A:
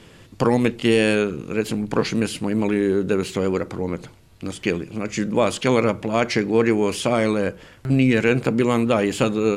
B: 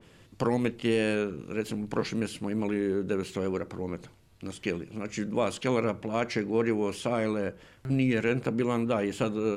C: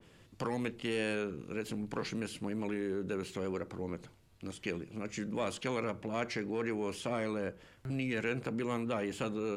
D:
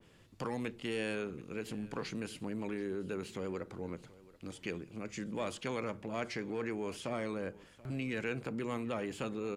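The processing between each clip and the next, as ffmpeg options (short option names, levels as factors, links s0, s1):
-af "adynamicequalizer=threshold=0.02:dfrequency=2300:dqfactor=0.7:tfrequency=2300:tqfactor=0.7:attack=5:release=100:ratio=0.375:range=2:mode=cutabove:tftype=highshelf,volume=0.376"
-filter_complex "[0:a]acrossover=split=590|870[s0][s1][s2];[s0]alimiter=level_in=1.06:limit=0.0631:level=0:latency=1,volume=0.944[s3];[s1]asoftclip=type=hard:threshold=0.0133[s4];[s3][s4][s2]amix=inputs=3:normalize=0,volume=0.596"
-af "aecho=1:1:732:0.0944,volume=0.75"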